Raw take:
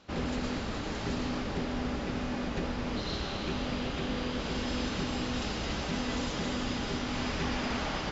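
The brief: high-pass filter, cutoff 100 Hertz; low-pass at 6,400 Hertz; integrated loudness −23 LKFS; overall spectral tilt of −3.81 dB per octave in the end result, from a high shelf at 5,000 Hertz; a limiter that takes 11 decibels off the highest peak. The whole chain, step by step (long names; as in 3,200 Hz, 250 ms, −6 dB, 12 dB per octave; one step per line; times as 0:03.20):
high-pass filter 100 Hz
low-pass filter 6,400 Hz
high-shelf EQ 5,000 Hz −3.5 dB
level +17.5 dB
brickwall limiter −15 dBFS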